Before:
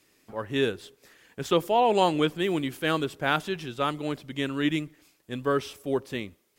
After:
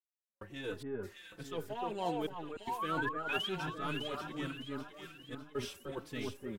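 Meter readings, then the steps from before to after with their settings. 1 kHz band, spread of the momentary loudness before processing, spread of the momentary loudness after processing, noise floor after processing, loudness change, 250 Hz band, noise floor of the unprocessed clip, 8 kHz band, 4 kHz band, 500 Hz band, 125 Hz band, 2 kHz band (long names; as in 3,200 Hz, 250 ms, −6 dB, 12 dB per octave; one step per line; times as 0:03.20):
−11.0 dB, 16 LU, 13 LU, below −85 dBFS, −12.0 dB, −12.5 dB, −68 dBFS, −9.5 dB, −9.5 dB, −13.5 dB, −10.5 dB, −8.5 dB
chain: gain on one half-wave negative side −3 dB
reversed playback
downward compressor 6 to 1, threshold −34 dBFS, peak gain reduction 14.5 dB
reversed playback
sound drawn into the spectrogram rise, 0:02.41–0:03.49, 570–3,400 Hz −35 dBFS
gate pattern "..xx.xxxxxx" 73 BPM −60 dB
delay that swaps between a low-pass and a high-pass 302 ms, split 1,600 Hz, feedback 66%, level −2 dB
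barber-pole flanger 4.2 ms −1.3 Hz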